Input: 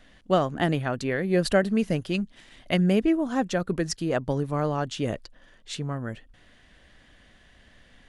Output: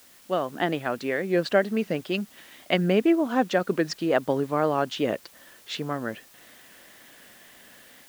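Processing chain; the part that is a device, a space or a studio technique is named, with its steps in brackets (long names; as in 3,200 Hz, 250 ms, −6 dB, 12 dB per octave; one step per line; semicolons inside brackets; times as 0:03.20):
dictaphone (band-pass filter 260–4,100 Hz; automatic gain control gain up to 11 dB; tape wow and flutter; white noise bed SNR 27 dB)
level −5.5 dB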